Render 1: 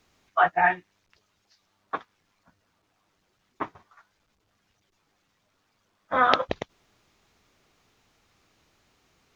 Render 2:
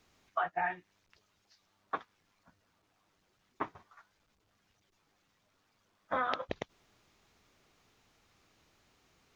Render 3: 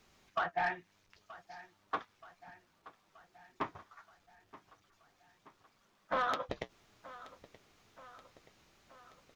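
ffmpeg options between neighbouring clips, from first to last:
ffmpeg -i in.wav -af "acompressor=threshold=-27dB:ratio=6,volume=-3dB" out.wav
ffmpeg -i in.wav -af "flanger=delay=5.1:depth=5.5:regen=-61:speed=0.34:shape=sinusoidal,asoftclip=type=tanh:threshold=-32dB,aecho=1:1:927|1854|2781|3708|4635:0.126|0.0743|0.0438|0.0259|0.0153,volume=6.5dB" out.wav

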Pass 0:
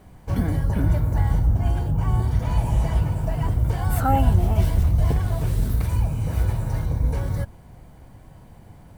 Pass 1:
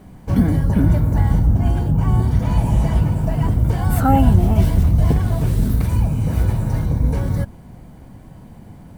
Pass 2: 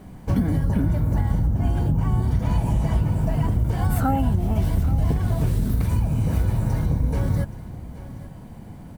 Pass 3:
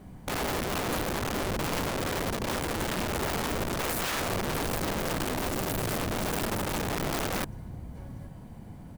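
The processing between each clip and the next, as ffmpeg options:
ffmpeg -i in.wav -af "equalizer=frequency=220:width_type=o:width=1.2:gain=8,volume=3dB" out.wav
ffmpeg -i in.wav -af "acompressor=threshold=-17dB:ratio=6,aecho=1:1:825:0.15" out.wav
ffmpeg -i in.wav -af "aeval=exprs='(mod(10.6*val(0)+1,2)-1)/10.6':channel_layout=same,volume=-5dB" out.wav

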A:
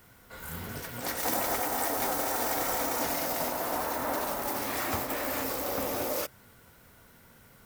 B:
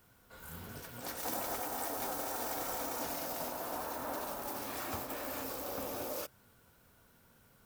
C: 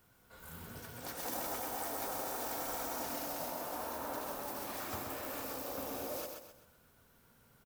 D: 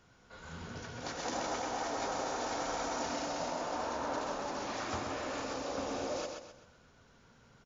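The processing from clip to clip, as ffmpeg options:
ffmpeg -i in.wav -af "equalizer=frequency=2000:width_type=o:width=0.22:gain=-7,volume=-8dB" out.wav
ffmpeg -i in.wav -af "aecho=1:1:129|258|387|516|645:0.562|0.208|0.077|0.0285|0.0105,volume=-2.5dB" out.wav
ffmpeg -i in.wav -af "bandreject=frequency=50:width_type=h:width=6,bandreject=frequency=100:width_type=h:width=6,volume=5dB" -ar 22050 -c:a mp2 -b:a 96k out.mp2

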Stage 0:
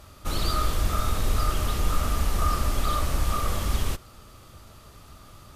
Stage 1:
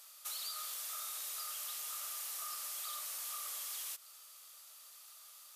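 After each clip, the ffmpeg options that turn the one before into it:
ffmpeg -i in.wav -af "highpass=frequency=490:width=0.5412,highpass=frequency=490:width=1.3066,aderivative,acompressor=threshold=-41dB:ratio=6,volume=1.5dB" out.wav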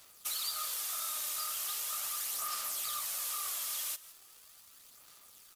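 ffmpeg -i in.wav -af "aeval=exprs='sgn(val(0))*max(abs(val(0))-0.0015,0)':channel_layout=same,aecho=1:1:172:0.133,aphaser=in_gain=1:out_gain=1:delay=3.3:decay=0.34:speed=0.39:type=sinusoidal,volume=6.5dB" out.wav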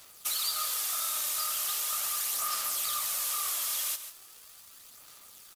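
ffmpeg -i in.wav -af "aecho=1:1:139:0.266,volume=5dB" out.wav

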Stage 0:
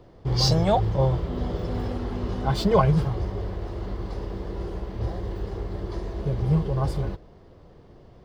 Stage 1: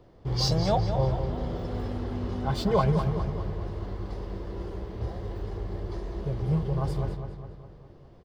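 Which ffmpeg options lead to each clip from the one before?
ffmpeg -i in.wav -filter_complex "[0:a]asplit=2[link_01][link_02];[link_02]adelay=204,lowpass=frequency=4700:poles=1,volume=-8dB,asplit=2[link_03][link_04];[link_04]adelay=204,lowpass=frequency=4700:poles=1,volume=0.55,asplit=2[link_05][link_06];[link_06]adelay=204,lowpass=frequency=4700:poles=1,volume=0.55,asplit=2[link_07][link_08];[link_08]adelay=204,lowpass=frequency=4700:poles=1,volume=0.55,asplit=2[link_09][link_10];[link_10]adelay=204,lowpass=frequency=4700:poles=1,volume=0.55,asplit=2[link_11][link_12];[link_12]adelay=204,lowpass=frequency=4700:poles=1,volume=0.55,asplit=2[link_13][link_14];[link_14]adelay=204,lowpass=frequency=4700:poles=1,volume=0.55[link_15];[link_01][link_03][link_05][link_07][link_09][link_11][link_13][link_15]amix=inputs=8:normalize=0,volume=-4.5dB" out.wav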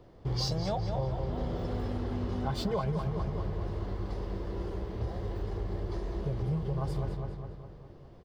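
ffmpeg -i in.wav -af "acompressor=threshold=-28dB:ratio=6" out.wav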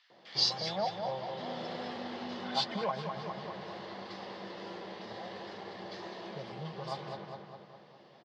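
ffmpeg -i in.wav -filter_complex "[0:a]highpass=frequency=210:width=0.5412,highpass=frequency=210:width=1.3066,equalizer=frequency=290:width_type=q:width=4:gain=-10,equalizer=frequency=410:width_type=q:width=4:gain=-8,equalizer=frequency=800:width_type=q:width=4:gain=3,equalizer=frequency=1800:width_type=q:width=4:gain=5,lowpass=frequency=4500:width=0.5412,lowpass=frequency=4500:width=1.3066,acrossover=split=1500[link_01][link_02];[link_01]adelay=100[link_03];[link_03][link_02]amix=inputs=2:normalize=0,crystalizer=i=5:c=0" out.wav

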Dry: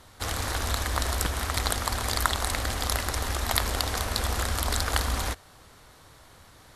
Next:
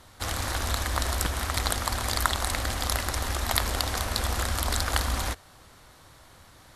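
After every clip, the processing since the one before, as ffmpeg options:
ffmpeg -i in.wav -af "bandreject=frequency=440:width=12" out.wav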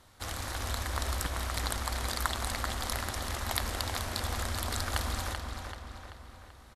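ffmpeg -i in.wav -filter_complex "[0:a]asplit=2[link_01][link_02];[link_02]adelay=385,lowpass=frequency=4900:poles=1,volume=-5dB,asplit=2[link_03][link_04];[link_04]adelay=385,lowpass=frequency=4900:poles=1,volume=0.54,asplit=2[link_05][link_06];[link_06]adelay=385,lowpass=frequency=4900:poles=1,volume=0.54,asplit=2[link_07][link_08];[link_08]adelay=385,lowpass=frequency=4900:poles=1,volume=0.54,asplit=2[link_09][link_10];[link_10]adelay=385,lowpass=frequency=4900:poles=1,volume=0.54,asplit=2[link_11][link_12];[link_12]adelay=385,lowpass=frequency=4900:poles=1,volume=0.54,asplit=2[link_13][link_14];[link_14]adelay=385,lowpass=frequency=4900:poles=1,volume=0.54[link_15];[link_01][link_03][link_05][link_07][link_09][link_11][link_13][link_15]amix=inputs=8:normalize=0,volume=-7dB" out.wav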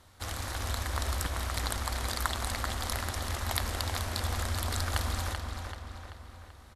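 ffmpeg -i in.wav -af "equalizer=frequency=86:width=4.1:gain=5.5" out.wav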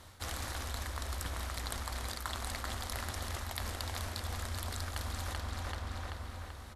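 ffmpeg -i in.wav -af "bandreject=frequency=48.98:width_type=h:width=4,bandreject=frequency=97.96:width_type=h:width=4,bandreject=frequency=146.94:width_type=h:width=4,bandreject=frequency=195.92:width_type=h:width=4,bandreject=frequency=244.9:width_type=h:width=4,bandreject=frequency=293.88:width_type=h:width=4,bandreject=frequency=342.86:width_type=h:width=4,bandreject=frequency=391.84:width_type=h:width=4,bandreject=frequency=440.82:width_type=h:width=4,bandreject=frequency=489.8:width_type=h:width=4,bandreject=frequency=538.78:width_type=h:width=4,bandreject=frequency=587.76:width_type=h:width=4,bandreject=frequency=636.74:width_type=h:width=4,bandreject=frequency=685.72:width_type=h:width=4,bandreject=frequency=734.7:width_type=h:width=4,bandreject=frequency=783.68:width_type=h:width=4,bandreject=frequency=832.66:width_type=h:width=4,bandreject=frequency=881.64:width_type=h:width=4,bandreject=frequency=930.62:width_type=h:width=4,bandreject=frequency=979.6:width_type=h:width=4,bandreject=frequency=1028.58:width_type=h:width=4,bandreject=frequency=1077.56:width_type=h:width=4,bandreject=frequency=1126.54:width_type=h:width=4,bandreject=frequency=1175.52:width_type=h:width=4,bandreject=frequency=1224.5:width_type=h:width=4,bandreject=frequency=1273.48:width_type=h:width=4,bandreject=frequency=1322.46:width_type=h:width=4,bandreject=frequency=1371.44:width_type=h:width=4,bandreject=frequency=1420.42:width_type=h:width=4,bandreject=frequency=1469.4:width_type=h:width=4,bandreject=frequency=1518.38:width_type=h:width=4,bandreject=frequency=1567.36:width_type=h:width=4,areverse,acompressor=threshold=-40dB:ratio=10,areverse,volume=5dB" out.wav

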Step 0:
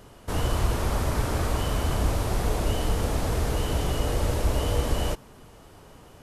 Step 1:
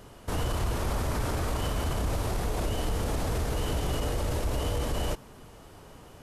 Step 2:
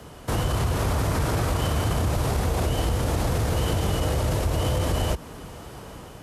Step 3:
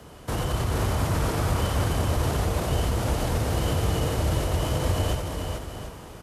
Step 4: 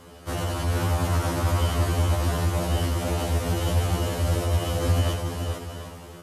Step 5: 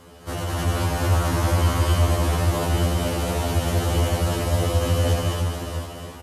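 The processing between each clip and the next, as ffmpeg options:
ffmpeg -i in.wav -af "alimiter=limit=-21dB:level=0:latency=1:release=32" out.wav
ffmpeg -i in.wav -af "dynaudnorm=framelen=230:gausssize=5:maxgain=3.5dB,afreqshift=28,acompressor=threshold=-26dB:ratio=6,volume=6dB" out.wav
ffmpeg -i in.wav -af "aecho=1:1:90|436|738:0.473|0.596|0.282,volume=-3dB" out.wav
ffmpeg -i in.wav -af "afftfilt=real='re*2*eq(mod(b,4),0)':imag='im*2*eq(mod(b,4),0)':win_size=2048:overlap=0.75,volume=2.5dB" out.wav
ffmpeg -i in.wav -af "aecho=1:1:204.1|277:0.794|0.708" out.wav

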